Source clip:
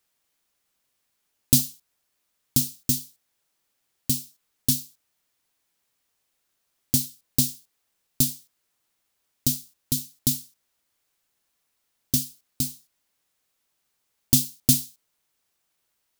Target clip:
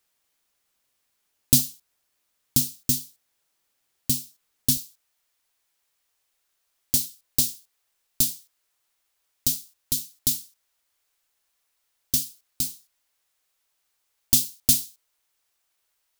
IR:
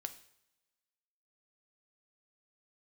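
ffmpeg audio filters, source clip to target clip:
-af "asetnsamples=n=441:p=0,asendcmd='4.77 equalizer g -12',equalizer=f=180:t=o:w=1.9:g=-3,volume=1dB"

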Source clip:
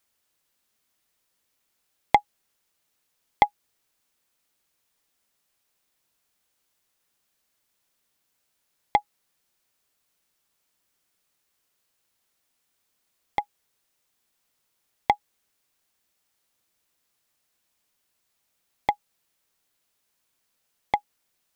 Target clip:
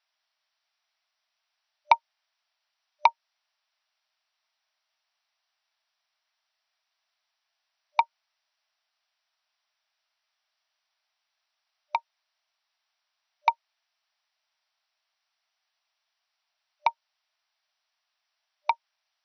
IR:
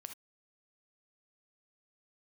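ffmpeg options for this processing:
-af "afftfilt=real='re*between(b*sr/4096,530,5300)':imag='im*between(b*sr/4096,530,5300)':win_size=4096:overlap=0.75,asetrate=49392,aresample=44100"

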